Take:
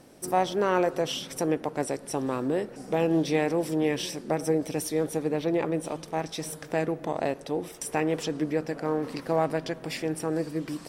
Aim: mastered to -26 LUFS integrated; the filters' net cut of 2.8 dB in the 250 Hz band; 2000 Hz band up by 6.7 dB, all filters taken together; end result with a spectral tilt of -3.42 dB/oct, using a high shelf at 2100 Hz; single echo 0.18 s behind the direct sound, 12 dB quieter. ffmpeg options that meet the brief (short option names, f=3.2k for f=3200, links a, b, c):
-af "equalizer=f=250:t=o:g=-4.5,equalizer=f=2k:t=o:g=5,highshelf=f=2.1k:g=6,aecho=1:1:180:0.251,volume=2dB"